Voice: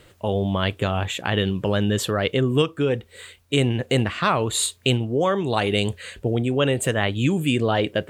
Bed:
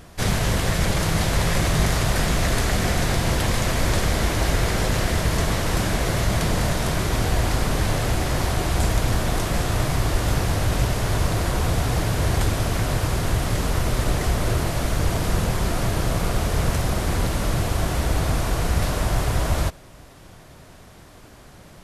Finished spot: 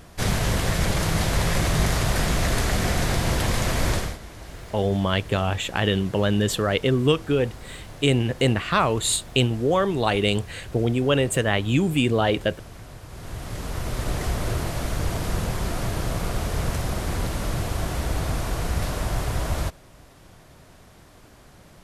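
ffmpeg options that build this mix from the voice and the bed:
ffmpeg -i stem1.wav -i stem2.wav -filter_complex "[0:a]adelay=4500,volume=0dB[link_01];[1:a]volume=13.5dB,afade=type=out:start_time=3.9:duration=0.28:silence=0.133352,afade=type=in:start_time=13.07:duration=1.15:silence=0.177828[link_02];[link_01][link_02]amix=inputs=2:normalize=0" out.wav

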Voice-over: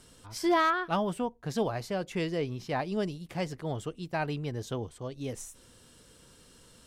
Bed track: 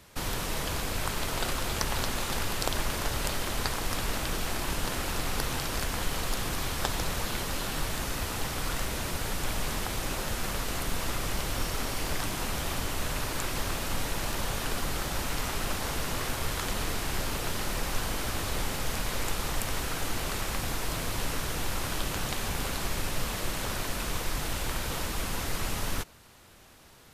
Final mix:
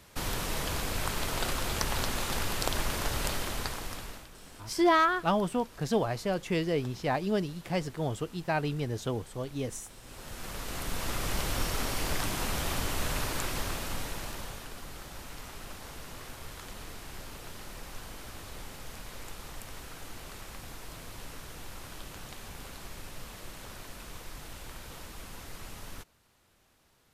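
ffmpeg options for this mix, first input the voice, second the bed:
ffmpeg -i stem1.wav -i stem2.wav -filter_complex "[0:a]adelay=4350,volume=2dB[link_01];[1:a]volume=19.5dB,afade=type=out:start_time=3.29:duration=1:silence=0.105925,afade=type=in:start_time=10.03:duration=1.36:silence=0.0944061,afade=type=out:start_time=13.19:duration=1.5:silence=0.237137[link_02];[link_01][link_02]amix=inputs=2:normalize=0" out.wav

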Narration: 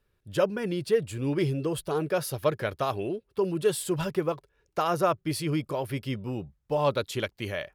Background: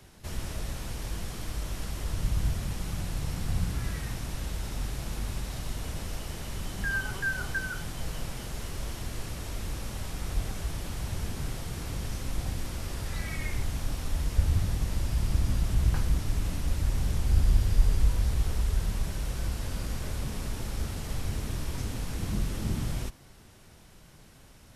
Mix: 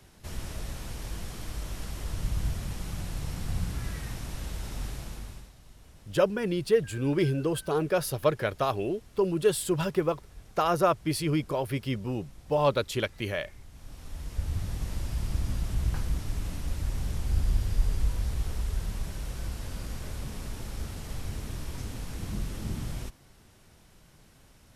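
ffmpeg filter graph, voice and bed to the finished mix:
ffmpeg -i stem1.wav -i stem2.wav -filter_complex "[0:a]adelay=5800,volume=1dB[link_01];[1:a]volume=13dB,afade=type=out:start_time=4.88:duration=0.65:silence=0.149624,afade=type=in:start_time=13.71:duration=1.16:silence=0.177828[link_02];[link_01][link_02]amix=inputs=2:normalize=0" out.wav

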